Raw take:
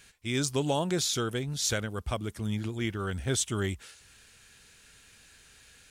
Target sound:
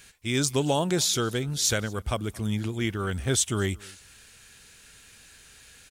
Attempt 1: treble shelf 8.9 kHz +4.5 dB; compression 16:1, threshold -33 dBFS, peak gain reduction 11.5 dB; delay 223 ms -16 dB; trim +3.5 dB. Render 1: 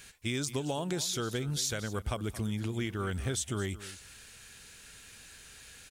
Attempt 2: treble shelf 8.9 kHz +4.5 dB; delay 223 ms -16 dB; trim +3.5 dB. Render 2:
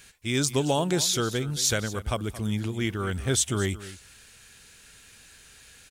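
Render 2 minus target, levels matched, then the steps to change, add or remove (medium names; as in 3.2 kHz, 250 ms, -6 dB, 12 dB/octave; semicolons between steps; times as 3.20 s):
echo-to-direct +9 dB
change: delay 223 ms -25 dB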